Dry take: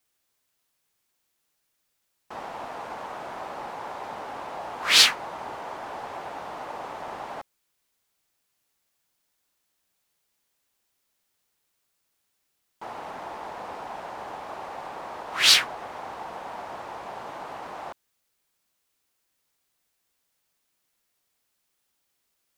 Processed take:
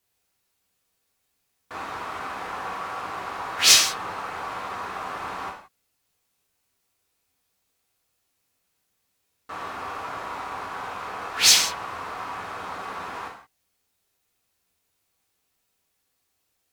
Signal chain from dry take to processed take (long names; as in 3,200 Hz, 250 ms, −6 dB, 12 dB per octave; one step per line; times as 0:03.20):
low-shelf EQ 260 Hz +4.5 dB
reverb whose tail is shaped and stops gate 270 ms falling, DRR −1.5 dB
wrong playback speed 33 rpm record played at 45 rpm
level −1 dB